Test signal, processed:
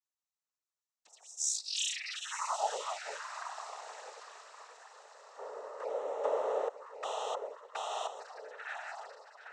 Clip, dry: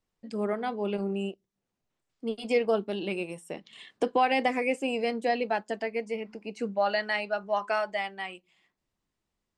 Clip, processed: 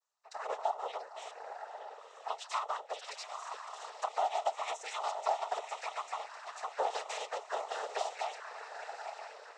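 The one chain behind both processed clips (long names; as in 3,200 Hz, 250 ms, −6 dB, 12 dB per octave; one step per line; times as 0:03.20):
lower of the sound and its delayed copy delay 5.3 ms
Butterworth high-pass 630 Hz 96 dB per octave
parametric band 2,600 Hz −12.5 dB 1.3 octaves
downward compressor 4 to 1, threshold −36 dBFS
feedback delay with all-pass diffusion 982 ms, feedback 41%, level −9 dB
flanger swept by the level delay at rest 3.4 ms, full sweep at −39 dBFS
cochlear-implant simulation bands 12
level +8.5 dB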